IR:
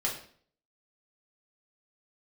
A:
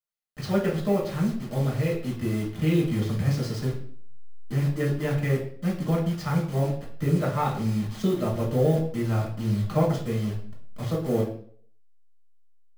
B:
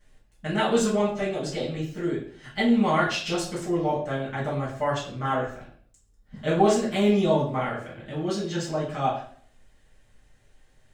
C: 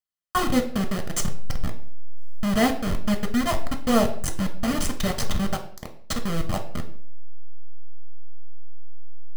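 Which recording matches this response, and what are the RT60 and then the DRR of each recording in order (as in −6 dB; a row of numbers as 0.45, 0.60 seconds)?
A; 0.50, 0.50, 0.50 seconds; −3.5, −10.5, 4.5 decibels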